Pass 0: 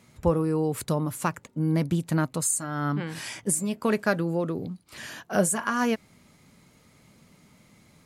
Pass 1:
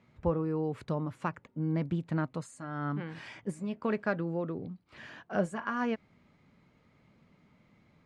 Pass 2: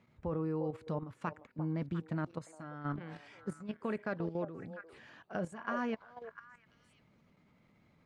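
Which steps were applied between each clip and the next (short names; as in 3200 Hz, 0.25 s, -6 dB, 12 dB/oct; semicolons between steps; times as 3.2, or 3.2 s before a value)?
LPF 2700 Hz 12 dB/oct; gain -6.5 dB
delay with a stepping band-pass 0.349 s, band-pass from 620 Hz, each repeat 1.4 oct, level -7 dB; level quantiser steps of 11 dB; gain -1.5 dB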